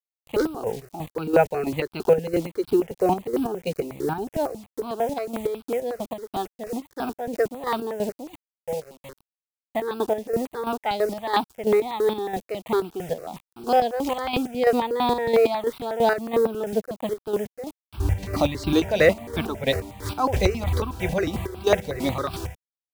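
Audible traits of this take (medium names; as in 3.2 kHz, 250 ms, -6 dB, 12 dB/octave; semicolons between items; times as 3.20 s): a quantiser's noise floor 8-bit, dither none; chopped level 3 Hz, depth 60%, duty 40%; notches that jump at a steady rate 11 Hz 340–1900 Hz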